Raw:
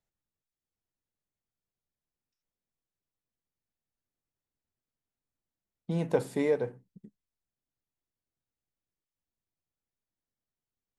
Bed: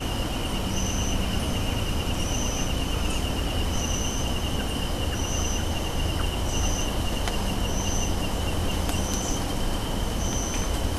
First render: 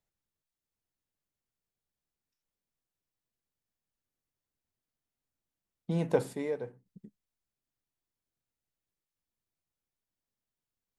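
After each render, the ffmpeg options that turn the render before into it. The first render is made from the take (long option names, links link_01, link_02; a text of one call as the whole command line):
ffmpeg -i in.wav -filter_complex "[0:a]asplit=3[link_01][link_02][link_03];[link_01]atrim=end=6.332[link_04];[link_02]atrim=start=6.328:end=6.862,asetpts=PTS-STARTPTS,volume=-7dB[link_05];[link_03]atrim=start=6.858[link_06];[link_04][link_05]acrossfade=duration=0.004:curve1=hsin:curve2=hsin[link_07];[link_07][link_06]acrossfade=duration=0.004:curve1=hsin:curve2=hsin" out.wav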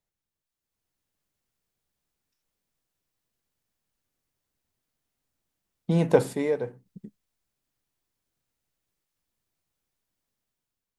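ffmpeg -i in.wav -af "dynaudnorm=framelen=300:gausssize=5:maxgain=8dB" out.wav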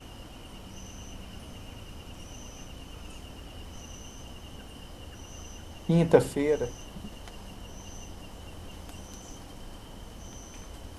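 ffmpeg -i in.wav -i bed.wav -filter_complex "[1:a]volume=-17.5dB[link_01];[0:a][link_01]amix=inputs=2:normalize=0" out.wav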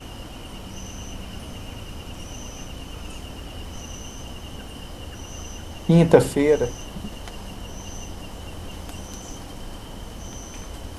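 ffmpeg -i in.wav -af "volume=8dB,alimiter=limit=-1dB:level=0:latency=1" out.wav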